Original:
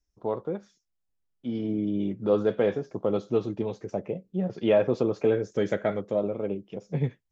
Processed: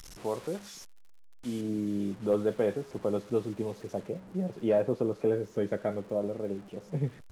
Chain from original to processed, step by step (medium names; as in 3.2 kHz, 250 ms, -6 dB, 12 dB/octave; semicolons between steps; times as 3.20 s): one-bit delta coder 64 kbps, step -39 dBFS; treble shelf 2 kHz +2.5 dB, from 1.61 s -5.5 dB, from 4.07 s -12 dB; crackle 56 per s -45 dBFS; trim -3.5 dB